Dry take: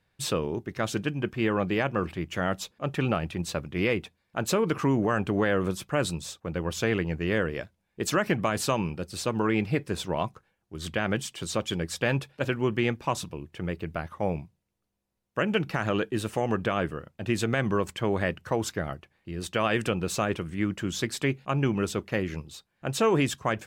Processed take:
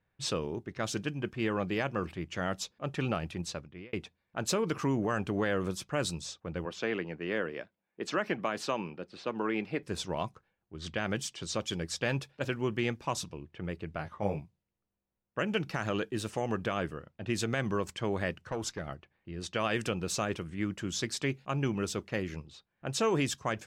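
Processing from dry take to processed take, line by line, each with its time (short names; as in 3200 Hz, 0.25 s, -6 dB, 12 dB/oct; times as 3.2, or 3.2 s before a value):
3.38–3.93 fade out
6.65–9.83 three-band isolator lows -21 dB, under 180 Hz, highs -13 dB, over 3900 Hz
13.97–14.4 doubler 20 ms -4 dB
18.32–18.88 tube stage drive 19 dB, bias 0.35
whole clip: low-pass opened by the level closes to 2400 Hz, open at -25.5 dBFS; dynamic EQ 5600 Hz, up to +7 dB, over -50 dBFS, Q 1.3; gain -5.5 dB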